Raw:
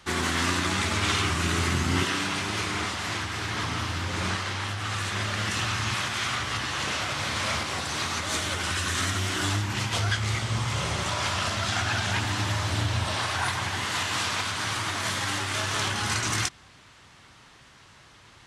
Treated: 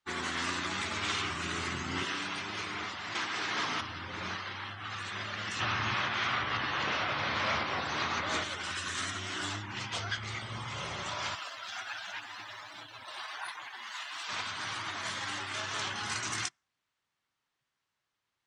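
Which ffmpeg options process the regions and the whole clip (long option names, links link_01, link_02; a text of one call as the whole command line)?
ffmpeg -i in.wav -filter_complex "[0:a]asettb=1/sr,asplit=3[link_01][link_02][link_03];[link_01]atrim=end=3.154[link_04];[link_02]atrim=start=3.15:end=3.81,asetpts=PTS-STARTPTS,afade=type=in:duration=0.004:curve=qsin,afade=type=out:start_time=0.656:duration=0.004:curve=qsin,highpass=190,acontrast=33[link_05];[link_03]atrim=start=3.806[link_06];[link_04][link_05]acrossfade=duration=0.004:curve1=hsin:curve2=qsin[link_07];[link_07][link_06]acrossfade=duration=0.004:curve1=qsin:curve2=hsin,asettb=1/sr,asplit=3[link_08][link_09][link_10];[link_08]atrim=end=5.604[link_11];[link_09]atrim=start=5.6:end=8.44,asetpts=PTS-STARTPTS,afade=type=in:duration=0.004:curve=qsin,afade=type=out:start_time=2.836:duration=0.004:curve=qsin,lowpass=frequency=2300:poles=1,acontrast=82[link_12];[link_10]atrim=start=8.436[link_13];[link_11][link_12]acrossfade=duration=0.004:curve1=hsin:curve2=qsin[link_14];[link_14][link_13]acrossfade=duration=0.004:curve1=qsin:curve2=hsin,asettb=1/sr,asplit=3[link_15][link_16][link_17];[link_15]atrim=end=11.354[link_18];[link_16]atrim=start=11.35:end=14.29,asetpts=PTS-STARTPTS,afade=type=in:duration=0.004:curve=qsin,afade=type=out:start_time=2.936:duration=0.004:curve=qsin,highpass=frequency=610:poles=1,acrusher=bits=4:mix=0:aa=0.5,flanger=delay=5.8:depth=3:regen=-36:speed=1.4:shape=triangular[link_19];[link_17]atrim=start=14.286[link_20];[link_18][link_19]acrossfade=duration=0.004:curve1=hsin:curve2=qsin[link_21];[link_21][link_20]acrossfade=duration=0.004:curve1=qsin:curve2=hsin,equalizer=frequency=66:width_type=o:width=1.8:gain=-6.5,afftdn=noise_reduction=25:noise_floor=-37,lowshelf=frequency=470:gain=-5,volume=-6dB" out.wav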